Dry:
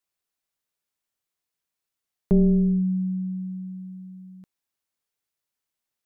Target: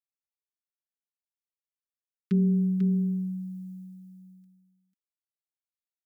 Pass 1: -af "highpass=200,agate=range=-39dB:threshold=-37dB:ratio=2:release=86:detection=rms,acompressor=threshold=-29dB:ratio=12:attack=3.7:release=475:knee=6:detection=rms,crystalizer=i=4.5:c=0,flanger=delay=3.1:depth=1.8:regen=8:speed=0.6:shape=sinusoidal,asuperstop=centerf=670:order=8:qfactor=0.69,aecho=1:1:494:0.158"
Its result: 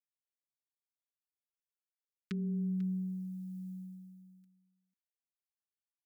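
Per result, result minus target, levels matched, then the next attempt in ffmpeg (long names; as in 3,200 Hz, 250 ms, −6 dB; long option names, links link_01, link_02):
downward compressor: peak gain reduction +14 dB; echo-to-direct −9.5 dB
-af "highpass=200,agate=range=-39dB:threshold=-37dB:ratio=2:release=86:detection=rms,crystalizer=i=4.5:c=0,flanger=delay=3.1:depth=1.8:regen=8:speed=0.6:shape=sinusoidal,asuperstop=centerf=670:order=8:qfactor=0.69,aecho=1:1:494:0.158"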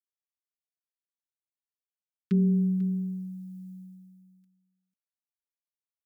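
echo-to-direct −9.5 dB
-af "highpass=200,agate=range=-39dB:threshold=-37dB:ratio=2:release=86:detection=rms,crystalizer=i=4.5:c=0,flanger=delay=3.1:depth=1.8:regen=8:speed=0.6:shape=sinusoidal,asuperstop=centerf=670:order=8:qfactor=0.69,aecho=1:1:494:0.473"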